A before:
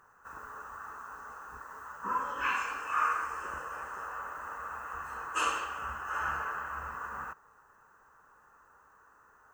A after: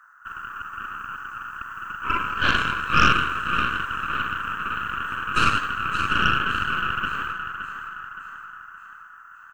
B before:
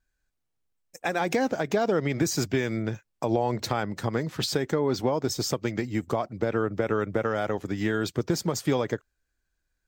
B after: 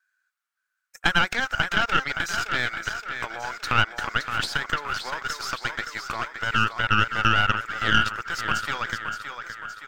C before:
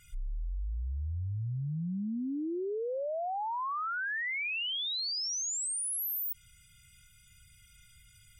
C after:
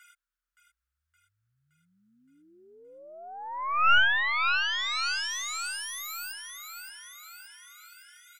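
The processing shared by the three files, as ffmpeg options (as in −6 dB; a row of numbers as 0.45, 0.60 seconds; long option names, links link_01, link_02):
-filter_complex "[0:a]acrossover=split=5200[link_01][link_02];[link_02]acompressor=threshold=-42dB:ratio=4:attack=1:release=60[link_03];[link_01][link_03]amix=inputs=2:normalize=0,highpass=frequency=1400:width_type=q:width=5.4,aecho=1:1:569|1138|1707|2276|2845|3414|3983:0.447|0.255|0.145|0.0827|0.0472|0.0269|0.0153,aeval=exprs='0.422*(cos(1*acos(clip(val(0)/0.422,-1,1)))-cos(1*PI/2))+0.15*(cos(4*acos(clip(val(0)/0.422,-1,1)))-cos(4*PI/2))':channel_layout=same"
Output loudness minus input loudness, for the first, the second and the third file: +11.5, +3.0, +7.0 LU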